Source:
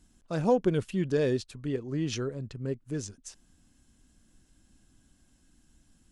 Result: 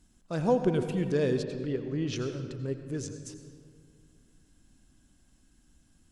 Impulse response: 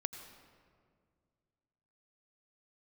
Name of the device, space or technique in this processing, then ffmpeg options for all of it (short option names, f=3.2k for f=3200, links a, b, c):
stairwell: -filter_complex "[1:a]atrim=start_sample=2205[a];[0:a][a]afir=irnorm=-1:irlink=0,asettb=1/sr,asplit=3[b][c][d];[b]atrim=end=1.434[e];[c]atrim=start=1.43:end=2.16,asetpts=PTS-STARTPTS,afade=t=in:d=0.004:c=qsin,afade=t=out:st=0.726:d=0.004:c=qsin,lowpass=5.4k[f];[d]atrim=start=2.156[g];[e][f]acrossfade=d=0.004:c1=hsin:c2=qsin[h];[h][g]acrossfade=d=0.004:c1=qsin:c2=hsin"